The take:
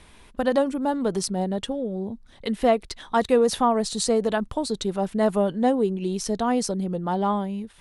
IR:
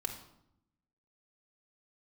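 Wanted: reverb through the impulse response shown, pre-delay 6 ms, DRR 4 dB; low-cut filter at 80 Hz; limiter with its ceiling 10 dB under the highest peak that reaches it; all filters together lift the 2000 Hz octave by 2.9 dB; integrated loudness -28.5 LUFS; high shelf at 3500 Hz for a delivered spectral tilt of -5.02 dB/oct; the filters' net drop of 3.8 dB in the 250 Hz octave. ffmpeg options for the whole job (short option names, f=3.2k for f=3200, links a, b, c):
-filter_complex "[0:a]highpass=80,equalizer=f=250:t=o:g=-4.5,equalizer=f=2k:t=o:g=5.5,highshelf=f=3.5k:g=-7,alimiter=limit=-19dB:level=0:latency=1,asplit=2[a][b];[1:a]atrim=start_sample=2205,adelay=6[c];[b][c]afir=irnorm=-1:irlink=0,volume=-5dB[d];[a][d]amix=inputs=2:normalize=0,volume=-0.5dB"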